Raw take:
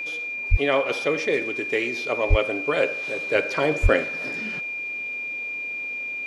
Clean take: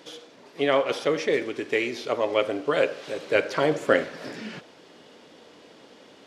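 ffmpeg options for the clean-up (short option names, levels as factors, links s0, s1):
-filter_complex "[0:a]bandreject=f=2400:w=30,asplit=3[s0][s1][s2];[s0]afade=t=out:st=0.5:d=0.02[s3];[s1]highpass=f=140:w=0.5412,highpass=f=140:w=1.3066,afade=t=in:st=0.5:d=0.02,afade=t=out:st=0.62:d=0.02[s4];[s2]afade=t=in:st=0.62:d=0.02[s5];[s3][s4][s5]amix=inputs=3:normalize=0,asplit=3[s6][s7][s8];[s6]afade=t=out:st=2.29:d=0.02[s9];[s7]highpass=f=140:w=0.5412,highpass=f=140:w=1.3066,afade=t=in:st=2.29:d=0.02,afade=t=out:st=2.41:d=0.02[s10];[s8]afade=t=in:st=2.41:d=0.02[s11];[s9][s10][s11]amix=inputs=3:normalize=0,asplit=3[s12][s13][s14];[s12]afade=t=out:st=3.82:d=0.02[s15];[s13]highpass=f=140:w=0.5412,highpass=f=140:w=1.3066,afade=t=in:st=3.82:d=0.02,afade=t=out:st=3.94:d=0.02[s16];[s14]afade=t=in:st=3.94:d=0.02[s17];[s15][s16][s17]amix=inputs=3:normalize=0"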